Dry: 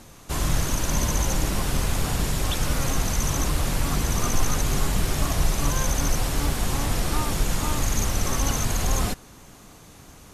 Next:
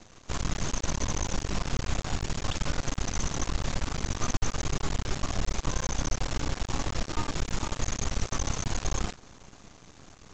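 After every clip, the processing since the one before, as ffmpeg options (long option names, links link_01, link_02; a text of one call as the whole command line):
ffmpeg -i in.wav -af "acompressor=threshold=-26dB:ratio=1.5,aresample=16000,aeval=exprs='max(val(0),0)':channel_layout=same,aresample=44100" out.wav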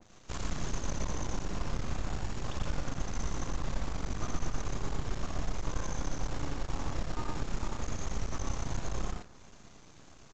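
ffmpeg -i in.wav -filter_complex "[0:a]asplit=2[link_01][link_02];[link_02]aecho=0:1:84.55|119.5:0.501|0.631[link_03];[link_01][link_03]amix=inputs=2:normalize=0,adynamicequalizer=threshold=0.00355:dfrequency=1900:dqfactor=0.7:tfrequency=1900:tqfactor=0.7:attack=5:release=100:ratio=0.375:range=3:mode=cutabove:tftype=highshelf,volume=-6.5dB" out.wav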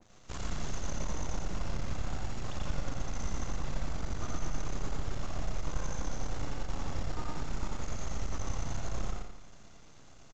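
ffmpeg -i in.wav -af "aecho=1:1:86|172|258|344|430|516:0.473|0.222|0.105|0.0491|0.0231|0.0109,volume=-2.5dB" out.wav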